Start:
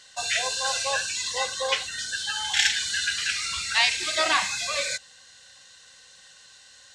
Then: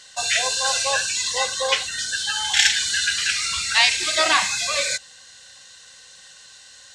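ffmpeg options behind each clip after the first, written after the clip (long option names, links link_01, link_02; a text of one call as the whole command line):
ffmpeg -i in.wav -af "equalizer=frequency=8600:width=0.59:gain=2.5,volume=4dB" out.wav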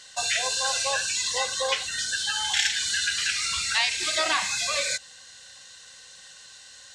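ffmpeg -i in.wav -af "acompressor=threshold=-23dB:ratio=2,volume=-1.5dB" out.wav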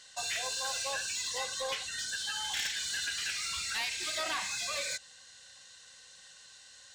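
ffmpeg -i in.wav -af "asoftclip=type=tanh:threshold=-21dB,volume=-7dB" out.wav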